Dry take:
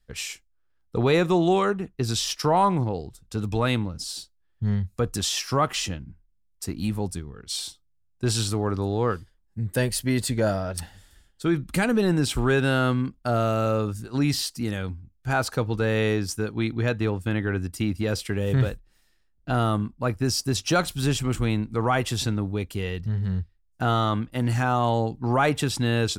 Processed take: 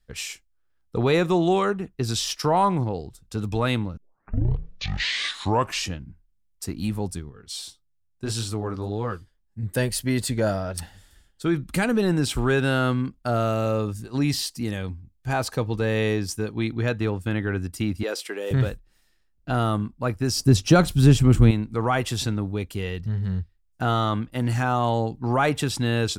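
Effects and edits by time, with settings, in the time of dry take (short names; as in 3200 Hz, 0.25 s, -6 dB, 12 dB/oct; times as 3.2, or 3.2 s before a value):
3.97 tape start 1.98 s
7.29–9.63 flange 1.7 Hz, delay 6.5 ms, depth 8.2 ms, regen -36%
13.54–16.7 notch 1400 Hz, Q 7.1
18.03–18.51 HPF 330 Hz 24 dB/oct
20.36–21.51 low shelf 430 Hz +11.5 dB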